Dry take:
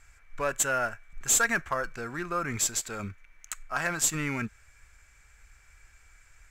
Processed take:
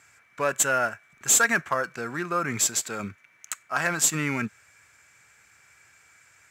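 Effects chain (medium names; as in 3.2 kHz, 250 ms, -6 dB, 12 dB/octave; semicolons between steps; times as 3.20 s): high-pass 120 Hz 24 dB/octave; trim +4 dB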